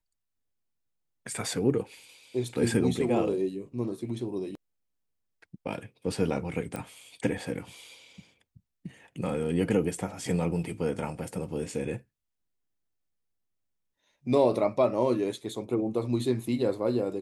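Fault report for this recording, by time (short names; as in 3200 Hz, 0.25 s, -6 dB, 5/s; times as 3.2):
6.76 pop -21 dBFS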